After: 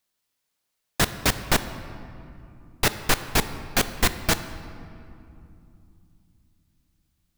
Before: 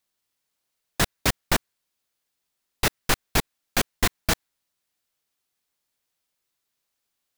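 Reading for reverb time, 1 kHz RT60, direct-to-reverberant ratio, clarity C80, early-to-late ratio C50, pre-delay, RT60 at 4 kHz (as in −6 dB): 2.7 s, 2.6 s, 10.5 dB, 12.5 dB, 12.0 dB, 4 ms, 1.5 s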